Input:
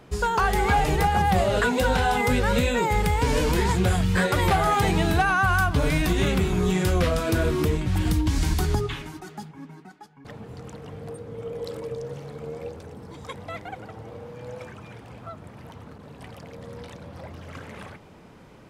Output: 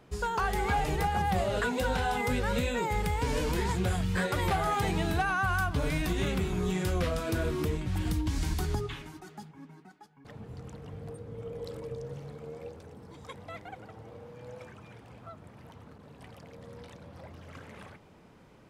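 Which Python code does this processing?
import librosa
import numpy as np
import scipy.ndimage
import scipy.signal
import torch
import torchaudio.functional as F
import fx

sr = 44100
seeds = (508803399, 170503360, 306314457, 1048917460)

y = fx.low_shelf(x, sr, hz=130.0, db=9.0, at=(10.35, 12.35))
y = F.gain(torch.from_numpy(y), -7.5).numpy()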